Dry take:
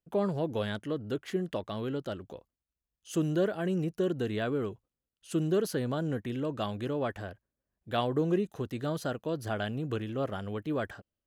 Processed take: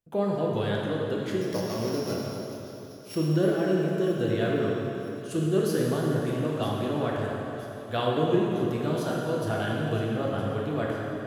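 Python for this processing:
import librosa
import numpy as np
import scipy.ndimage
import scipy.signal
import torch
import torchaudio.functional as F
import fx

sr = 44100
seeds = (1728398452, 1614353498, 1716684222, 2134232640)

y = fx.sample_sort(x, sr, block=8, at=(1.41, 3.17))
y = fx.echo_wet_highpass(y, sr, ms=967, feedback_pct=58, hz=3700.0, wet_db=-13.0)
y = fx.rev_plate(y, sr, seeds[0], rt60_s=3.4, hf_ratio=0.7, predelay_ms=0, drr_db=-3.5)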